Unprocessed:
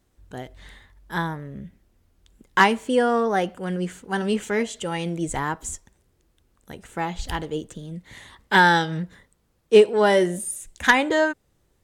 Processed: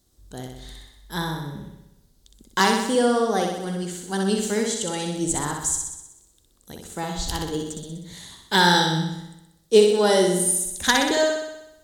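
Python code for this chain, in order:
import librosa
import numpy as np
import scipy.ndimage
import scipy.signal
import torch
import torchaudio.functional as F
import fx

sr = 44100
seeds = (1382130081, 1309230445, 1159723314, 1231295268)

p1 = fx.curve_eq(x, sr, hz=(360.0, 2500.0, 3900.0), db=(0, -6, 9))
p2 = p1 + fx.room_flutter(p1, sr, wall_m=10.7, rt60_s=0.89, dry=0)
y = F.gain(torch.from_numpy(p2), -1.0).numpy()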